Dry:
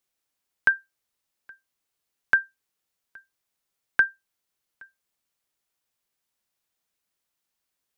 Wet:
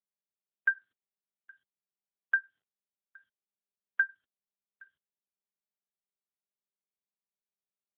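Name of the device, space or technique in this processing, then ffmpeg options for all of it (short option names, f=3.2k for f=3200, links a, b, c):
mobile call with aggressive noise cancelling: -af "highpass=f=170:p=1,afftdn=nr=33:nf=-52,volume=-5.5dB" -ar 8000 -c:a libopencore_amrnb -b:a 12200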